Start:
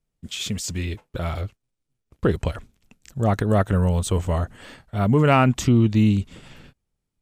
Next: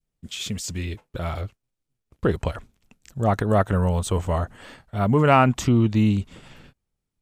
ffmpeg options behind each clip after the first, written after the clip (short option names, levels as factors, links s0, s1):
-af "adynamicequalizer=threshold=0.0251:dfrequency=930:dqfactor=0.82:tfrequency=930:tqfactor=0.82:attack=5:release=100:ratio=0.375:range=2.5:mode=boostabove:tftype=bell,volume=0.794"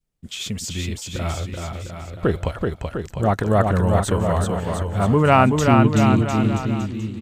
-af "aecho=1:1:380|703|977.6|1211|1409:0.631|0.398|0.251|0.158|0.1,volume=1.19"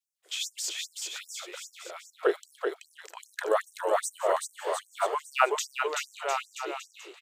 -af "afftfilt=real='re*gte(b*sr/1024,310*pow(5600/310,0.5+0.5*sin(2*PI*2.5*pts/sr)))':imag='im*gte(b*sr/1024,310*pow(5600/310,0.5+0.5*sin(2*PI*2.5*pts/sr)))':win_size=1024:overlap=0.75,volume=0.794"